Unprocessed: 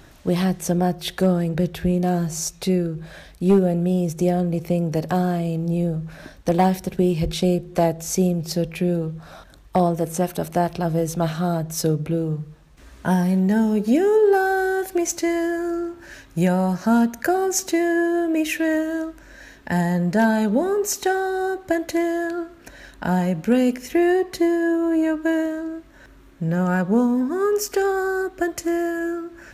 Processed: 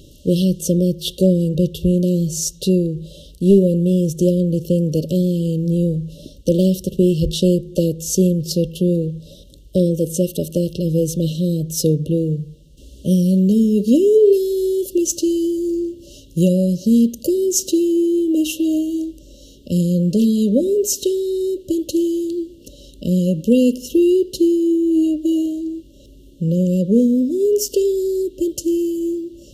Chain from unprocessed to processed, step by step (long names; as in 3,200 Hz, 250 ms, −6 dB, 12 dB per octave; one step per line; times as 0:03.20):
linear-phase brick-wall band-stop 610–2,700 Hz
level +4.5 dB